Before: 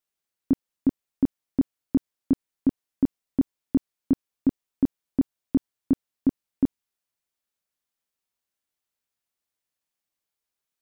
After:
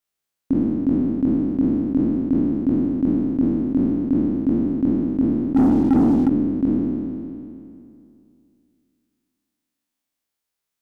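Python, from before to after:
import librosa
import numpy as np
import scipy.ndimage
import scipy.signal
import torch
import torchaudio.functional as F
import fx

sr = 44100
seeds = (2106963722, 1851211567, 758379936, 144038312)

y = fx.spec_trails(x, sr, decay_s=2.59)
y = fx.leveller(y, sr, passes=2, at=(5.56, 6.28))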